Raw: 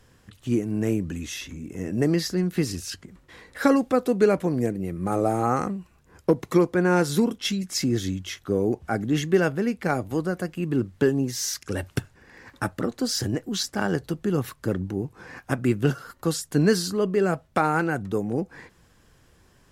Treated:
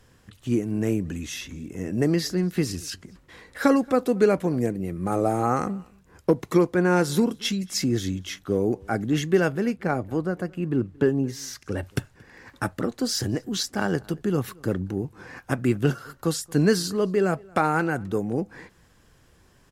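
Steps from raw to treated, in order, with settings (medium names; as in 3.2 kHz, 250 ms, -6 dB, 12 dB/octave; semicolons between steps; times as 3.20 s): 9.76–11.83 s: treble shelf 3.1 kHz -10 dB; echo from a far wall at 39 m, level -26 dB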